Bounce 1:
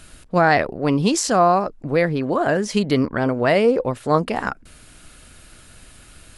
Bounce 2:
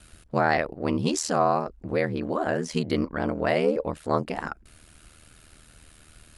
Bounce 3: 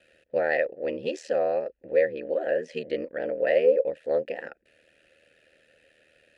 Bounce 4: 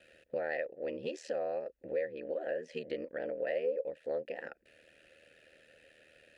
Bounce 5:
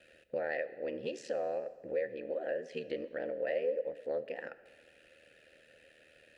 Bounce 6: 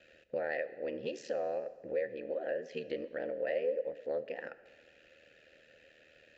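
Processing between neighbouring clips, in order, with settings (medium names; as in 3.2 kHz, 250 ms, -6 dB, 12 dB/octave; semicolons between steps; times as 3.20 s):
ring modulator 39 Hz; trim -4 dB
vowel filter e; trim +8.5 dB
compression 2:1, threshold -41 dBFS, peak gain reduction 14 dB
plate-style reverb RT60 1.6 s, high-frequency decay 0.9×, DRR 14 dB
resampled via 16 kHz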